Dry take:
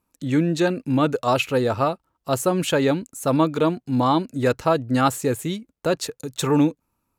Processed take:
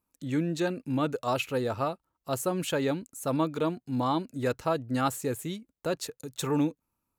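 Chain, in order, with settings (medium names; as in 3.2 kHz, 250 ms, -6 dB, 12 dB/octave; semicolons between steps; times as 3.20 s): treble shelf 12 kHz +7 dB; trim -8.5 dB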